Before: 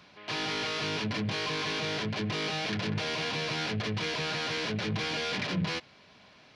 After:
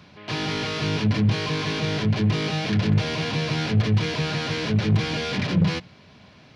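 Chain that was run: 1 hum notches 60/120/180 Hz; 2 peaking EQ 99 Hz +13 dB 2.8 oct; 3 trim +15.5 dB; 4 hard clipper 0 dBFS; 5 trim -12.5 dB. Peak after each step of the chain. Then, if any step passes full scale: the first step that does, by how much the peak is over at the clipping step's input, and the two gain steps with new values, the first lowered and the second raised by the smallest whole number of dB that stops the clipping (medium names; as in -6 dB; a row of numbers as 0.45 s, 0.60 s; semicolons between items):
-20.0 dBFS, -10.5 dBFS, +5.0 dBFS, 0.0 dBFS, -12.5 dBFS; step 3, 5.0 dB; step 3 +10.5 dB, step 5 -7.5 dB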